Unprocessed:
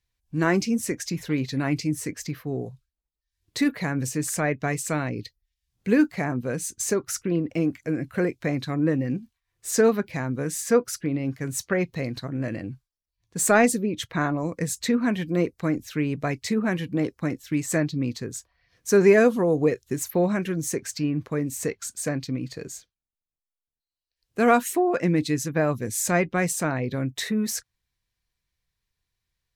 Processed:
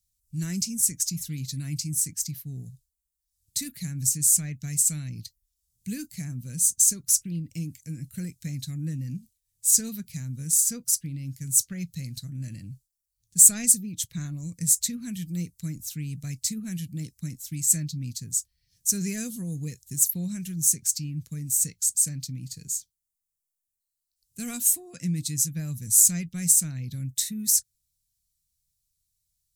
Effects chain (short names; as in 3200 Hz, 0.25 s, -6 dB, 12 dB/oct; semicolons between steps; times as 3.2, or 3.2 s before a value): EQ curve 170 Hz 0 dB, 400 Hz -25 dB, 990 Hz -29 dB, 7900 Hz +14 dB; gain -2 dB